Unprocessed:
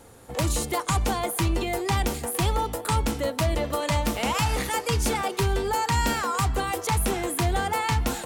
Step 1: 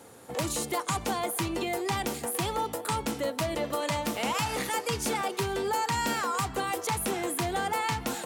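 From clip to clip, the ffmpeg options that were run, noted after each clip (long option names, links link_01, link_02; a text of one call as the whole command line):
ffmpeg -i in.wav -filter_complex "[0:a]highpass=150,asplit=2[link_01][link_02];[link_02]alimiter=level_in=0.5dB:limit=-24dB:level=0:latency=1:release=329,volume=-0.5dB,volume=1dB[link_03];[link_01][link_03]amix=inputs=2:normalize=0,volume=-6.5dB" out.wav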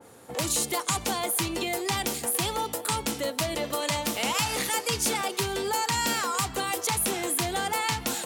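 ffmpeg -i in.wav -af "adynamicequalizer=threshold=0.00562:dfrequency=2300:dqfactor=0.7:tfrequency=2300:tqfactor=0.7:attack=5:release=100:ratio=0.375:range=3.5:mode=boostabove:tftype=highshelf" out.wav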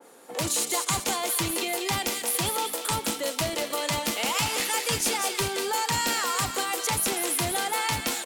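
ffmpeg -i in.wav -filter_complex "[0:a]acrossover=split=210|1200[link_01][link_02][link_03];[link_01]acrusher=bits=5:mix=0:aa=0.000001[link_04];[link_03]aecho=1:1:195|390|585|780|975|1170:0.596|0.298|0.149|0.0745|0.0372|0.0186[link_05];[link_04][link_02][link_05]amix=inputs=3:normalize=0" out.wav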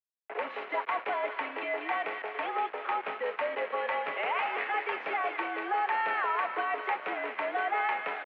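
ffmpeg -i in.wav -af "aresample=16000,acrusher=bits=5:mix=0:aa=0.000001,aresample=44100,highpass=frequency=520:width_type=q:width=0.5412,highpass=frequency=520:width_type=q:width=1.307,lowpass=frequency=2400:width_type=q:width=0.5176,lowpass=frequency=2400:width_type=q:width=0.7071,lowpass=frequency=2400:width_type=q:width=1.932,afreqshift=-59" out.wav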